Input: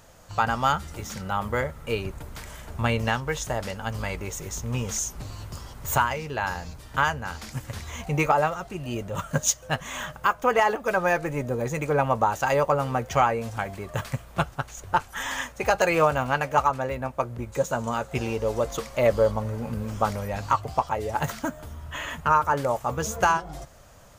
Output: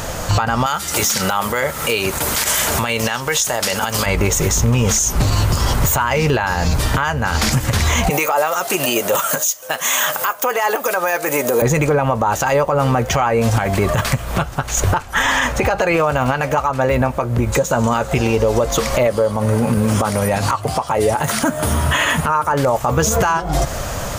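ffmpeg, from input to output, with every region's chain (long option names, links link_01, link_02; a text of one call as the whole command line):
ffmpeg -i in.wav -filter_complex "[0:a]asettb=1/sr,asplit=3[link_01][link_02][link_03];[link_01]atrim=end=0.664[link_04];[link_02]atrim=start=0.66:end=4.06,asetpts=PTS-STARTPTS,afade=type=in:duration=0.004:curve=qsin,afade=type=out:start_time=3.396:duration=0.004:curve=qsin,highpass=frequency=390:poles=1,highshelf=frequency=3400:gain=11[link_05];[link_03]atrim=start=4.056[link_06];[link_04][link_05]acrossfade=duration=0.004:curve1=hsin:curve2=qsin[link_07];[link_07][link_06]acrossfade=duration=0.004:curve1=qsin:curve2=hsin,asettb=1/sr,asplit=3[link_08][link_09][link_10];[link_08]atrim=end=8.104[link_11];[link_09]atrim=start=8.1:end=11.62,asetpts=PTS-STARTPTS,afade=type=in:duration=0.004:curve=qsin,afade=type=out:start_time=3.516:duration=0.004:curve=qsin,highpass=410,aemphasis=mode=production:type=50fm[link_12];[link_10]atrim=start=11.616[link_13];[link_11][link_12]acrossfade=duration=0.004:curve1=hsin:curve2=qsin[link_14];[link_14][link_13]acrossfade=duration=0.004:curve1=qsin:curve2=hsin,asettb=1/sr,asplit=3[link_15][link_16][link_17];[link_15]atrim=end=15.024[link_18];[link_16]atrim=start=15.02:end=15.97,asetpts=PTS-STARTPTS,afade=type=in:duration=0.004:curve=qsin,afade=type=out:start_time=0.946:duration=0.004:curve=qsin,highshelf=frequency=4500:gain=-7.5,acompressor=threshold=-29dB:ratio=2:attack=3.2:release=140:knee=1:detection=peak[link_19];[link_17]atrim=start=15.966[link_20];[link_18][link_19]acrossfade=duration=0.004:curve1=hsin:curve2=qsin[link_21];[link_21][link_20]acrossfade=duration=0.004:curve1=qsin:curve2=hsin,asettb=1/sr,asplit=3[link_22][link_23][link_24];[link_22]atrim=end=19.074[link_25];[link_23]atrim=start=19.07:end=22.52,asetpts=PTS-STARTPTS,afade=type=in:duration=0.004:curve=qsin,afade=type=out:start_time=3.446:duration=0.004:curve=qsin,highpass=110,equalizer=frequency=9600:width=4.6:gain=13[link_26];[link_24]atrim=start=22.516[link_27];[link_25][link_26]acrossfade=duration=0.004:curve1=hsin:curve2=qsin[link_28];[link_28][link_27]acrossfade=duration=0.004:curve1=qsin:curve2=hsin,acompressor=threshold=-36dB:ratio=12,alimiter=level_in=33.5dB:limit=-1dB:release=50:level=0:latency=1,volume=-6dB" out.wav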